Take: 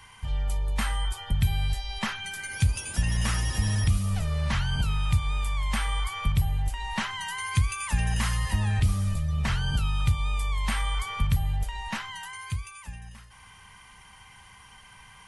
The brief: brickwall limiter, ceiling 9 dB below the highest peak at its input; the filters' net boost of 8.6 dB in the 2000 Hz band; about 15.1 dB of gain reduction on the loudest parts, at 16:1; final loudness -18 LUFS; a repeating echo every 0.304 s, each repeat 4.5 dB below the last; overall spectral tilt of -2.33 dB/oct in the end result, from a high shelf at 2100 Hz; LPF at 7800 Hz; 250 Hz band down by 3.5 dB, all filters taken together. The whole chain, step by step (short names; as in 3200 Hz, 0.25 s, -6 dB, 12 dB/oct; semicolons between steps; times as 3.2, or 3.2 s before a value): LPF 7800 Hz; bell 250 Hz -6.5 dB; bell 2000 Hz +6 dB; high shelf 2100 Hz +8 dB; compressor 16:1, threshold -33 dBFS; limiter -30 dBFS; feedback echo 0.304 s, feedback 60%, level -4.5 dB; gain +19.5 dB